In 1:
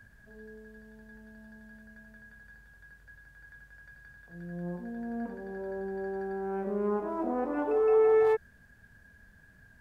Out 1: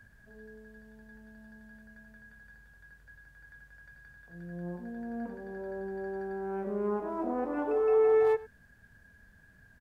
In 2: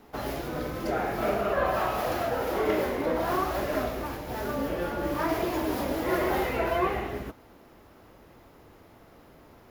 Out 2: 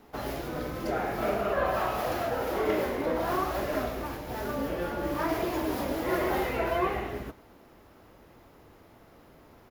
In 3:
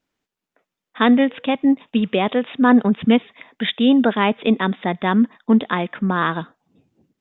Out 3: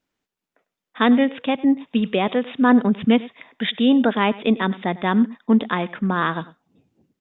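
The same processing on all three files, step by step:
delay 100 ms -19.5 dB; trim -1.5 dB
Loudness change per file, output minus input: -1.0 LU, -1.5 LU, -1.5 LU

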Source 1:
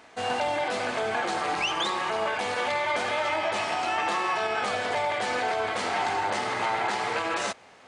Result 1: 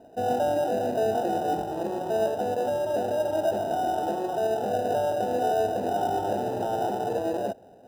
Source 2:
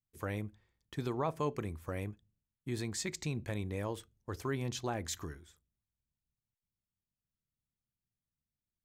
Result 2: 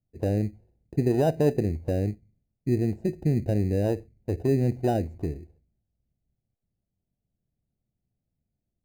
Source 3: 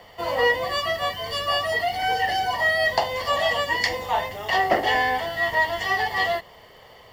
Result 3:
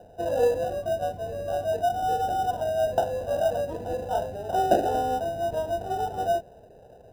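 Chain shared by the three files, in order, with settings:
elliptic low-pass 730 Hz, stop band 50 dB; in parallel at -12 dB: sample-and-hold 20×; on the sum: normalise loudness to -27 LUFS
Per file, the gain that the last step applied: +4.5 dB, +12.0 dB, +0.5 dB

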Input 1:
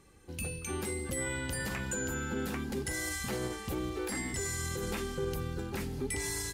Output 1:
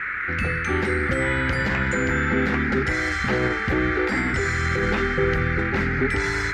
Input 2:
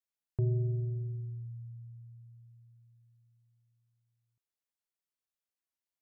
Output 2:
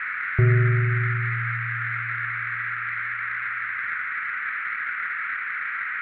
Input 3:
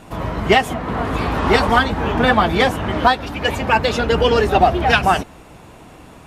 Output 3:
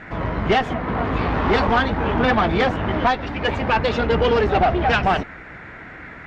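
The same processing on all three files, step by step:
band noise 1.3–2.2 kHz -39 dBFS; valve stage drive 13 dB, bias 0.45; distance through air 190 m; peak normalisation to -9 dBFS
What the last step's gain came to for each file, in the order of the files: +14.5 dB, +13.5 dB, +2.0 dB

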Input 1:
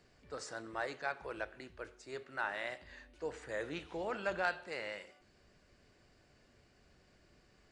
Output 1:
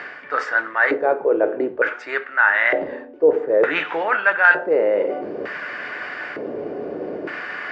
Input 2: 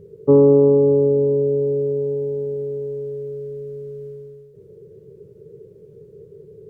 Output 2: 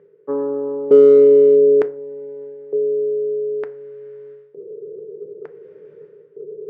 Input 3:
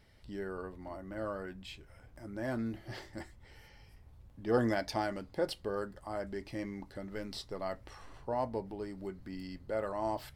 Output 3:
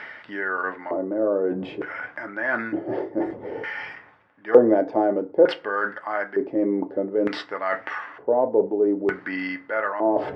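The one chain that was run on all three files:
tracing distortion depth 0.025 ms; tape spacing loss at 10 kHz 25 dB; LFO band-pass square 0.55 Hz 440–1700 Hz; band-stop 4.1 kHz, Q 11; in parallel at -9 dB: hard clipper -16.5 dBFS; on the sum: high-pass 170 Hz 12 dB/octave; reverse; upward compressor, threshold -35 dBFS; reverse; FDN reverb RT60 0.39 s, low-frequency decay 1×, high-frequency decay 0.6×, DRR 11 dB; peak normalisation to -1.5 dBFS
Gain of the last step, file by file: +24.5 dB, +7.0 dB, +18.0 dB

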